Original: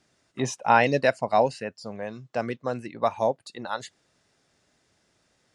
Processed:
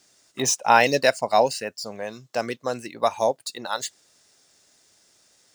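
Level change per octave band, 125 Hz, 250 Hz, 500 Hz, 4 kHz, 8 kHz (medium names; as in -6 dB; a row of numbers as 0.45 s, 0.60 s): -4.0 dB, -1.0 dB, +2.0 dB, +9.5 dB, +13.5 dB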